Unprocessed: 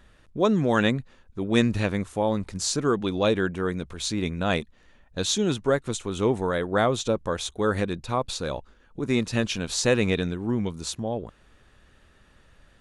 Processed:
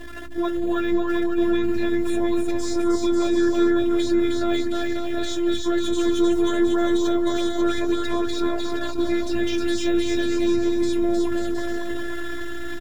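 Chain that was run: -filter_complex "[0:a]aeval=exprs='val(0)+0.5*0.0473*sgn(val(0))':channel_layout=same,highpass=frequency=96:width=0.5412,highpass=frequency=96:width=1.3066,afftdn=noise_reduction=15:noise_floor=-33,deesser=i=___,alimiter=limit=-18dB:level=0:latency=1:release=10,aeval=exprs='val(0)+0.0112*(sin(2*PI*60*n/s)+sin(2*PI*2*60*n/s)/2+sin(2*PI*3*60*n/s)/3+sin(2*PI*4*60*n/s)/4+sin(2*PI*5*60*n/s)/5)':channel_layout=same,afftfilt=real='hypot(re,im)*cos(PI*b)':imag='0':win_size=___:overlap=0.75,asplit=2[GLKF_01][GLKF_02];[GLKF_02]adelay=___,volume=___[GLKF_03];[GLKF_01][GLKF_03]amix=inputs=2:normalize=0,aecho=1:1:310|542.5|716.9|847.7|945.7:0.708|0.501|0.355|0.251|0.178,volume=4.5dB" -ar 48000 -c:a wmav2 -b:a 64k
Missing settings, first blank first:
0.85, 512, 18, -10.5dB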